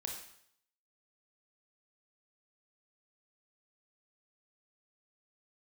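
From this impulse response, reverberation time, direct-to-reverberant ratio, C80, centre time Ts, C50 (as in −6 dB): 0.65 s, 0.5 dB, 7.5 dB, 34 ms, 4.5 dB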